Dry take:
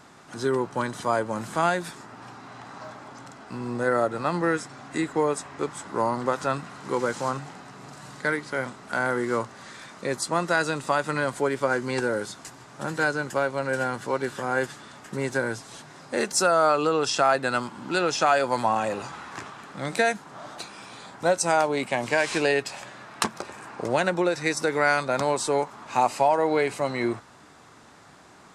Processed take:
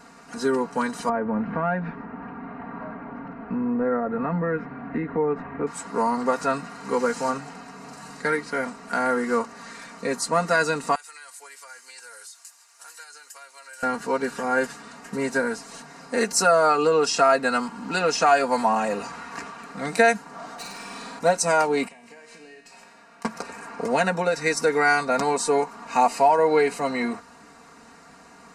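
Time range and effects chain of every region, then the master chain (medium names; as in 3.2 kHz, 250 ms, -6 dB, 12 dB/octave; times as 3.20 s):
1.09–5.67 s: bass shelf 330 Hz +11.5 dB + compression 2.5:1, threshold -25 dBFS + low-pass 2.3 kHz 24 dB/octave
10.95–13.83 s: high-pass 570 Hz + differentiator + compression 5:1, threshold -41 dBFS
20.55–21.19 s: hard clipper -34 dBFS + flutter echo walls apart 8.8 m, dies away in 0.95 s
21.88–23.25 s: compression 16:1, threshold -34 dBFS + feedback comb 58 Hz, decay 1.4 s, mix 80%
whole clip: band-stop 3.4 kHz, Q 5.2; comb 4.3 ms, depth 88%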